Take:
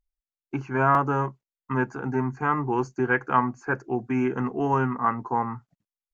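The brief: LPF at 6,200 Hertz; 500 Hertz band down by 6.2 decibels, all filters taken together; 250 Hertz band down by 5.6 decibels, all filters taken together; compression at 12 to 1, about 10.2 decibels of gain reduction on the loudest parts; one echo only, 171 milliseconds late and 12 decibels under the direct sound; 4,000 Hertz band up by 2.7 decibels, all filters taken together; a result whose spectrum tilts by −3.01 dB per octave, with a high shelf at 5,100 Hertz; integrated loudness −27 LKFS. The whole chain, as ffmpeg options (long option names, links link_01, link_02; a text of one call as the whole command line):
ffmpeg -i in.wav -af "lowpass=6200,equalizer=frequency=250:width_type=o:gain=-4.5,equalizer=frequency=500:width_type=o:gain=-7,equalizer=frequency=4000:width_type=o:gain=8,highshelf=frequency=5100:gain=-7,acompressor=threshold=-27dB:ratio=12,aecho=1:1:171:0.251,volume=6.5dB" out.wav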